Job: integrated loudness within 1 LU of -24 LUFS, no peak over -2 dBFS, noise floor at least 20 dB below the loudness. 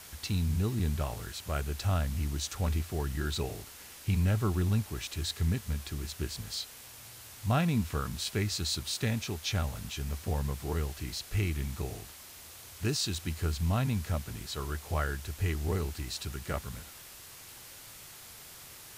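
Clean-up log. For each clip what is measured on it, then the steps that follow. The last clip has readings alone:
noise floor -50 dBFS; noise floor target -53 dBFS; loudness -33.0 LUFS; peak level -16.5 dBFS; loudness target -24.0 LUFS
-> noise print and reduce 6 dB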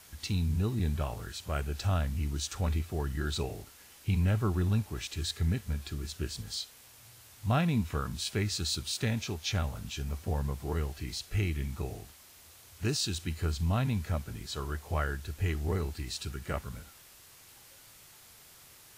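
noise floor -56 dBFS; loudness -33.0 LUFS; peak level -16.5 dBFS; loudness target -24.0 LUFS
-> trim +9 dB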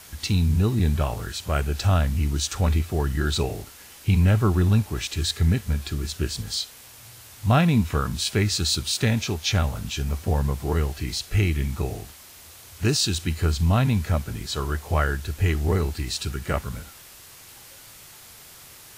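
loudness -24.0 LUFS; peak level -7.5 dBFS; noise floor -47 dBFS

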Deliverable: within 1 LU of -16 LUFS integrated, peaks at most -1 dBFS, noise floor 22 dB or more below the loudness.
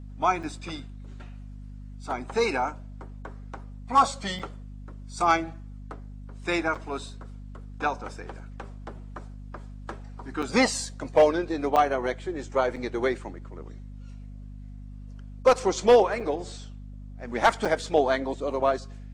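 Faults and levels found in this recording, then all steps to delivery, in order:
dropouts 8; longest dropout 5.7 ms; hum 50 Hz; highest harmonic 250 Hz; hum level -38 dBFS; loudness -26.0 LUFS; peak level -10.0 dBFS; loudness target -16.0 LUFS
-> interpolate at 0.43/4.39/6.75/10.42/11.76/12.76/16.20/17.65 s, 5.7 ms; de-hum 50 Hz, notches 5; trim +10 dB; peak limiter -1 dBFS

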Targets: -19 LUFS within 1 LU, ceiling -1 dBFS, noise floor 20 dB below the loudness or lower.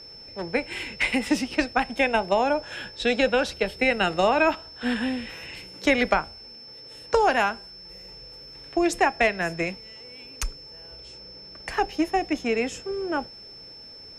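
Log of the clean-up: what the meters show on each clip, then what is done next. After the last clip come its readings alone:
steady tone 5.3 kHz; tone level -42 dBFS; loudness -25.0 LUFS; peak level -7.5 dBFS; loudness target -19.0 LUFS
-> band-stop 5.3 kHz, Q 30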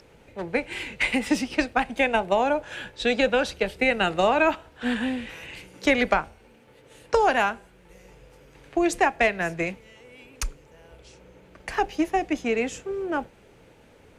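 steady tone not found; loudness -25.0 LUFS; peak level -8.0 dBFS; loudness target -19.0 LUFS
-> trim +6 dB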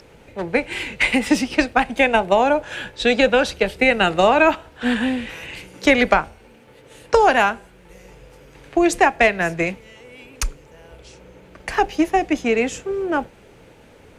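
loudness -19.0 LUFS; peak level -2.0 dBFS; noise floor -48 dBFS

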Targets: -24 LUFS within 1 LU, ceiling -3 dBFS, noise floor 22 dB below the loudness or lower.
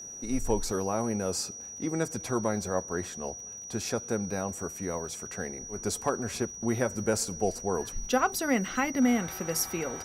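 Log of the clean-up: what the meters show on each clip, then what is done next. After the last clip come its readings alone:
tick rate 27 per s; steady tone 5.8 kHz; tone level -40 dBFS; loudness -31.0 LUFS; peak level -12.5 dBFS; loudness target -24.0 LUFS
-> de-click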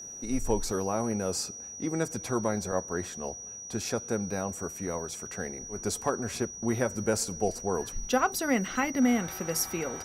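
tick rate 0 per s; steady tone 5.8 kHz; tone level -40 dBFS
-> band-stop 5.8 kHz, Q 30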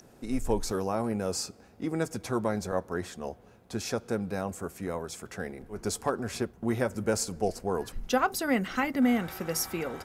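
steady tone not found; loudness -31.5 LUFS; peak level -12.5 dBFS; loudness target -24.0 LUFS
-> trim +7.5 dB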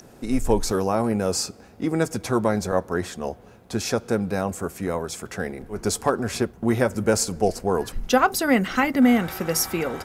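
loudness -24.0 LUFS; peak level -5.0 dBFS; noise floor -49 dBFS

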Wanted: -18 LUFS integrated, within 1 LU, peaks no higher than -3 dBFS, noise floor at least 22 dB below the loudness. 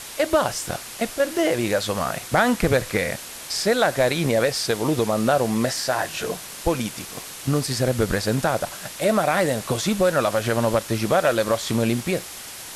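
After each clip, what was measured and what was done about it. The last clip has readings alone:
noise floor -37 dBFS; noise floor target -45 dBFS; loudness -22.5 LUFS; peak level -6.0 dBFS; loudness target -18.0 LUFS
-> noise reduction 8 dB, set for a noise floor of -37 dBFS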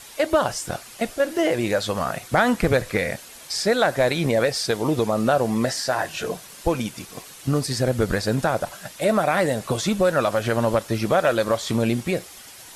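noise floor -43 dBFS; noise floor target -45 dBFS
-> noise reduction 6 dB, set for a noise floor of -43 dBFS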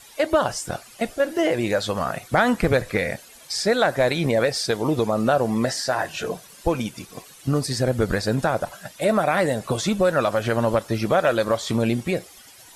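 noise floor -47 dBFS; loudness -23.0 LUFS; peak level -6.5 dBFS; loudness target -18.0 LUFS
-> trim +5 dB; peak limiter -3 dBFS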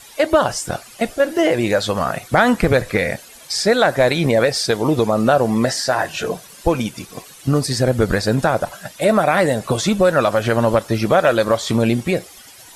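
loudness -18.0 LUFS; peak level -3.0 dBFS; noise floor -42 dBFS

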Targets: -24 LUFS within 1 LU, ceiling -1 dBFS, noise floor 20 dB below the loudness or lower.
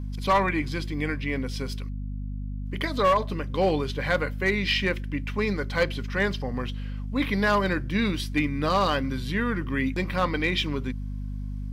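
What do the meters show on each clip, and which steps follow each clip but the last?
clipped samples 0.4%; clipping level -15.0 dBFS; hum 50 Hz; highest harmonic 250 Hz; hum level -30 dBFS; loudness -27.0 LUFS; peak level -15.0 dBFS; loudness target -24.0 LUFS
-> clip repair -15 dBFS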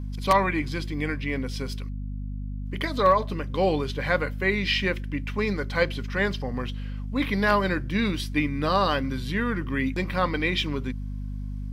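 clipped samples 0.0%; hum 50 Hz; highest harmonic 250 Hz; hum level -30 dBFS
-> de-hum 50 Hz, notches 5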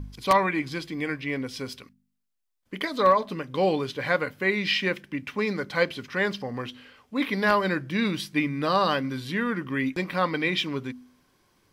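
hum not found; loudness -26.5 LUFS; peak level -6.0 dBFS; loudness target -24.0 LUFS
-> trim +2.5 dB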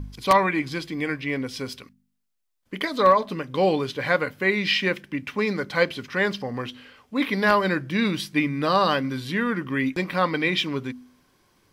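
loudness -24.0 LUFS; peak level -3.5 dBFS; noise floor -72 dBFS

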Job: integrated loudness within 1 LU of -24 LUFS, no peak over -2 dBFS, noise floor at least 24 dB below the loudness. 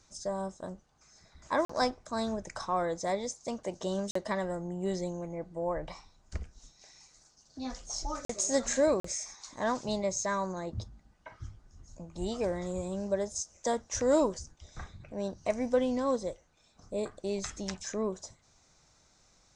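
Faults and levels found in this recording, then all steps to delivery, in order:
dropouts 4; longest dropout 44 ms; loudness -33.5 LUFS; peak level -14.5 dBFS; loudness target -24.0 LUFS
-> interpolate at 1.65/4.11/8.25/9.00 s, 44 ms; trim +9.5 dB

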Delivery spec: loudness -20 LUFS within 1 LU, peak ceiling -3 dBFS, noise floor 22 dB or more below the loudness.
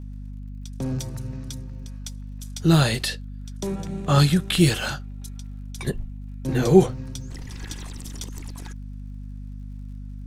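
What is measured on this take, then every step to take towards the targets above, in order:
tick rate 55 per s; hum 50 Hz; highest harmonic 250 Hz; hum level -33 dBFS; loudness -23.5 LUFS; peak level -3.0 dBFS; loudness target -20.0 LUFS
-> de-click; de-hum 50 Hz, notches 5; trim +3.5 dB; peak limiter -3 dBFS

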